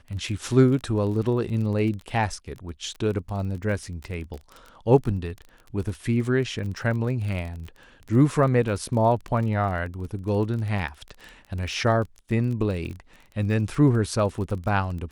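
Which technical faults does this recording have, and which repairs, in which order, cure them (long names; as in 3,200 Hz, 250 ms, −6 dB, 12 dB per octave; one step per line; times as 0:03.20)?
surface crackle 26 per second −32 dBFS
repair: click removal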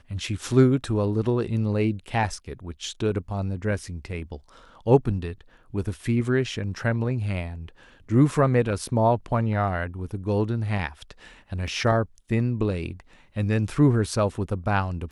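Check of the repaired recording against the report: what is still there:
none of them is left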